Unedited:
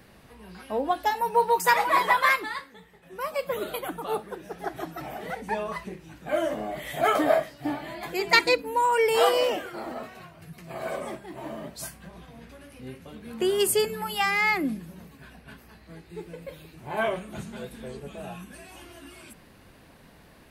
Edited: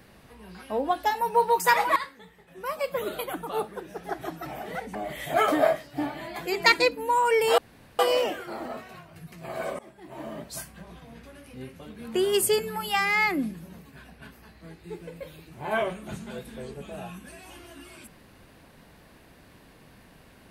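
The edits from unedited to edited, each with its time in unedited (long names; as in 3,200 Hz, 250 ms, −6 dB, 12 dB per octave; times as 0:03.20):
0:01.96–0:02.51: remove
0:05.50–0:06.62: remove
0:09.25: splice in room tone 0.41 s
0:11.05–0:11.58: fade in, from −19.5 dB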